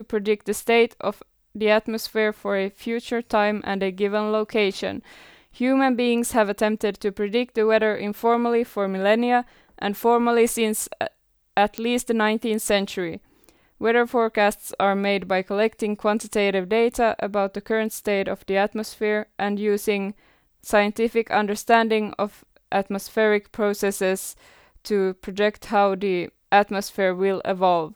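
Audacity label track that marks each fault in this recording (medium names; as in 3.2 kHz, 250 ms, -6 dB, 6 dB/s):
11.780000	11.780000	pop -12 dBFS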